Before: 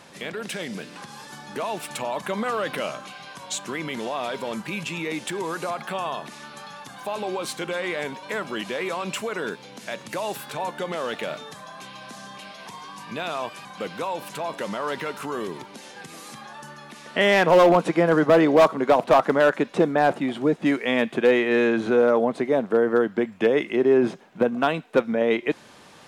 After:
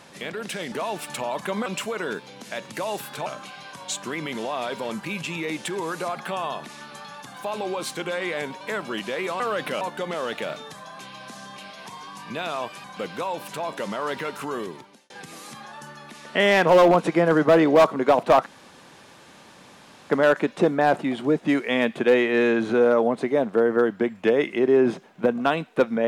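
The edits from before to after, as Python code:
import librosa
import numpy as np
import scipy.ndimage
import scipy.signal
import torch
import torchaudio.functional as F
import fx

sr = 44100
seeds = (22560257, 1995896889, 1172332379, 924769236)

y = fx.edit(x, sr, fx.cut(start_s=0.72, length_s=0.81),
    fx.swap(start_s=2.47, length_s=0.41, other_s=9.02, other_length_s=1.6),
    fx.fade_out_span(start_s=15.36, length_s=0.55),
    fx.insert_room_tone(at_s=19.27, length_s=1.64), tone=tone)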